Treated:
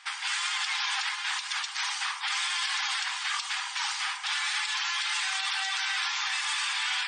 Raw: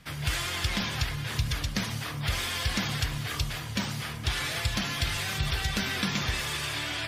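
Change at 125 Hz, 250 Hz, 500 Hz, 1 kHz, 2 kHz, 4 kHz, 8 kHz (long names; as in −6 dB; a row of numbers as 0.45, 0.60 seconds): below −40 dB, below −40 dB, below −30 dB, +3.5 dB, +3.5 dB, +3.0 dB, +2.5 dB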